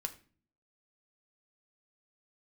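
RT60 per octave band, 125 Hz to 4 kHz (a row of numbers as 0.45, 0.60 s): 0.75, 0.75, 0.50, 0.35, 0.40, 0.35 s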